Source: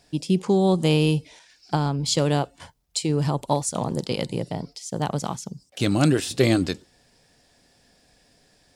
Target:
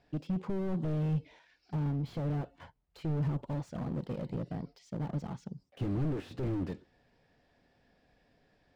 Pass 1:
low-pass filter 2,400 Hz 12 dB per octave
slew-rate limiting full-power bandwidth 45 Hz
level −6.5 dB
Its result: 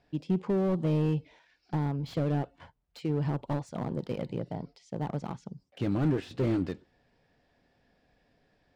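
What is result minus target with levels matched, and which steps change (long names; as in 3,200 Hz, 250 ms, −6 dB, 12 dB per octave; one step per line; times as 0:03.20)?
slew-rate limiting: distortion −10 dB
change: slew-rate limiting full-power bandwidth 15.5 Hz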